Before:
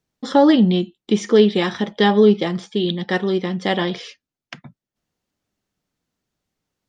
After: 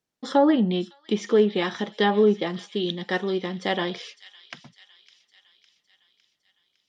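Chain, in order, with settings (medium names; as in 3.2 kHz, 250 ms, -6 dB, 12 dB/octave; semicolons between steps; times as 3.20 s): low-pass that closes with the level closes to 2 kHz, closed at -8.5 dBFS; bass shelf 140 Hz -12 dB; on a send: feedback echo behind a high-pass 557 ms, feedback 57%, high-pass 3.1 kHz, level -13 dB; on the sum: trim -4 dB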